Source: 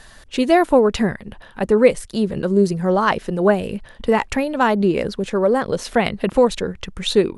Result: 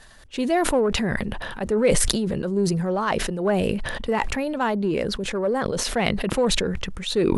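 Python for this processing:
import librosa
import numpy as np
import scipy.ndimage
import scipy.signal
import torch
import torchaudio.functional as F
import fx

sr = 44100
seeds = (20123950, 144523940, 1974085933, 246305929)

p1 = 10.0 ** (-16.0 / 20.0) * np.tanh(x / 10.0 ** (-16.0 / 20.0))
p2 = x + (p1 * 10.0 ** (-9.0 / 20.0))
p3 = fx.sustainer(p2, sr, db_per_s=23.0)
y = p3 * 10.0 ** (-9.0 / 20.0)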